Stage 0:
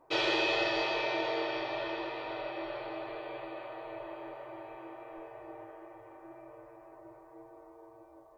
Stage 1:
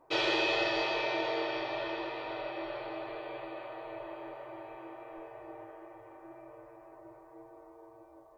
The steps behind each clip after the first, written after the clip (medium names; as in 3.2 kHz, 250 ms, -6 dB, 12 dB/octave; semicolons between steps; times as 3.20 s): no audible change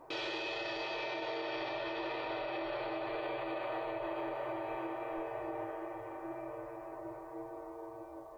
compression, threshold -38 dBFS, peak gain reduction 11.5 dB; peak limiter -37.5 dBFS, peak gain reduction 10.5 dB; trim +7.5 dB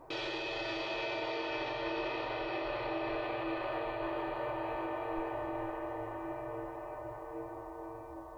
bass shelf 140 Hz +10.5 dB; echo that smears into a reverb 523 ms, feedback 45%, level -5.5 dB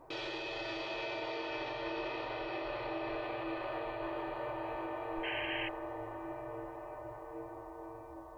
painted sound noise, 5.23–5.69 s, 1.5–3.2 kHz -37 dBFS; trim -2.5 dB